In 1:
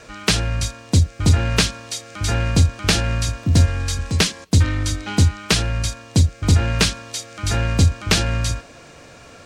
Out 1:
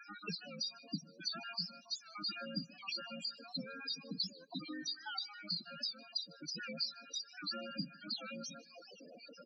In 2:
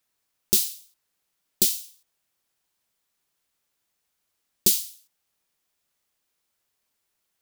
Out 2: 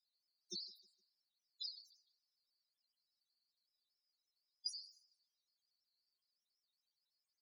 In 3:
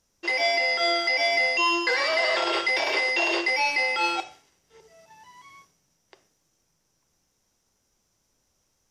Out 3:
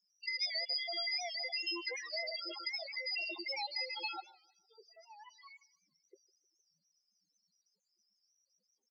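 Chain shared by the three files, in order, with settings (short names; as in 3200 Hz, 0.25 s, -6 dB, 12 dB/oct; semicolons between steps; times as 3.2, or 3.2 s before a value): random spectral dropouts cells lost 50%; steep high-pass 160 Hz 72 dB/oct; compressor 2:1, threshold -45 dBFS; bell 4600 Hz +12 dB 0.69 oct; loudest bins only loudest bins 8; on a send: feedback echo 0.153 s, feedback 44%, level -24 dB; on the sum: record warp 78 rpm, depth 100 cents; gain -3 dB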